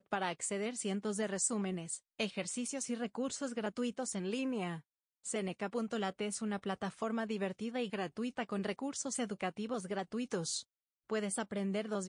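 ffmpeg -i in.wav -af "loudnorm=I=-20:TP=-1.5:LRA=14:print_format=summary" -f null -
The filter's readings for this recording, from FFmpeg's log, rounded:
Input Integrated:    -38.0 LUFS
Input True Peak:     -20.4 dBTP
Input LRA:             1.4 LU
Input Threshold:     -48.1 LUFS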